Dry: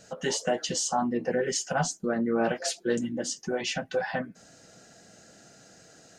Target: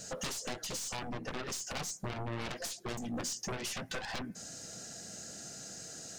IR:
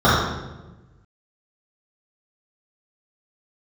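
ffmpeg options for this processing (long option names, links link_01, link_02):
-filter_complex "[0:a]aeval=exprs='0.211*(cos(1*acos(clip(val(0)/0.211,-1,1)))-cos(1*PI/2))+0.0376*(cos(4*acos(clip(val(0)/0.211,-1,1)))-cos(4*PI/2))+0.0668*(cos(7*acos(clip(val(0)/0.211,-1,1)))-cos(7*PI/2))':channel_layout=same,bass=frequency=250:gain=4,treble=frequency=4000:gain=11,acompressor=threshold=-30dB:ratio=6,asoftclip=type=tanh:threshold=-31dB,acrossover=split=9600[link_01][link_02];[link_02]acompressor=threshold=-51dB:ratio=4:attack=1:release=60[link_03];[link_01][link_03]amix=inputs=2:normalize=0,asplit=2[link_04][link_05];[1:a]atrim=start_sample=2205,asetrate=66150,aresample=44100[link_06];[link_05][link_06]afir=irnorm=-1:irlink=0,volume=-49.5dB[link_07];[link_04][link_07]amix=inputs=2:normalize=0"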